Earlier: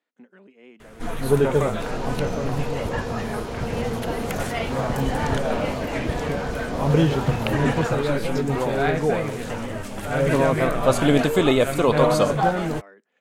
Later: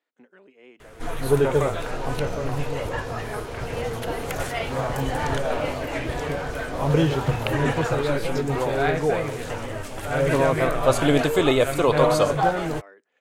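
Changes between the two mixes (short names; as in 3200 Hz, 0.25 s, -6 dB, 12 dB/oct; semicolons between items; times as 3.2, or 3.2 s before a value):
second sound -3.5 dB; master: add bell 210 Hz -13.5 dB 0.35 oct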